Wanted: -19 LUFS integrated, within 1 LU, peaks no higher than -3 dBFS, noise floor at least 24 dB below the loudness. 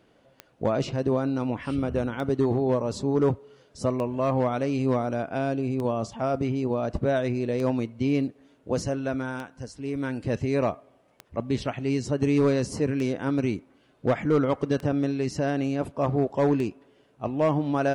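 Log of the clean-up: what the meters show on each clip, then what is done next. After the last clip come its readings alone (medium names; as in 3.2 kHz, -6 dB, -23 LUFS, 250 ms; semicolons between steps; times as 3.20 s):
clicks found 10; loudness -27.0 LUFS; peak level -13.0 dBFS; loudness target -19.0 LUFS
-> de-click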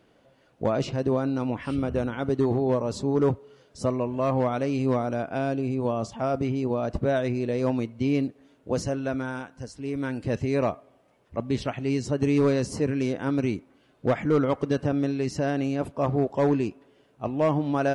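clicks found 0; loudness -27.0 LUFS; peak level -14.5 dBFS; loudness target -19.0 LUFS
-> trim +8 dB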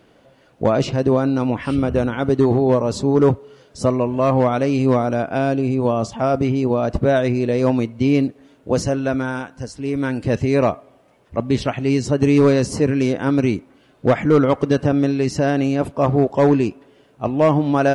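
loudness -19.0 LUFS; peak level -6.5 dBFS; noise floor -54 dBFS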